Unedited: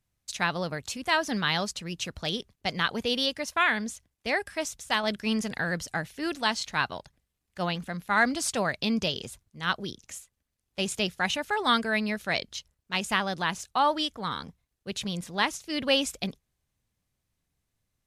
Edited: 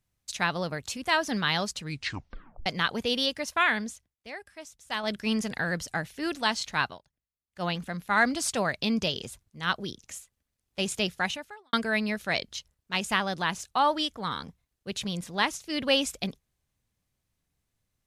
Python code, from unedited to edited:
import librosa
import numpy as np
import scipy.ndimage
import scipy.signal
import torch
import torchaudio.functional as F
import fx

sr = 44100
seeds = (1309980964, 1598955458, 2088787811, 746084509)

y = fx.edit(x, sr, fx.tape_stop(start_s=1.8, length_s=0.86),
    fx.fade_down_up(start_s=3.77, length_s=1.41, db=-13.0, fade_s=0.38),
    fx.fade_down_up(start_s=6.84, length_s=0.83, db=-17.0, fade_s=0.16),
    fx.fade_out_span(start_s=11.21, length_s=0.52, curve='qua'), tone=tone)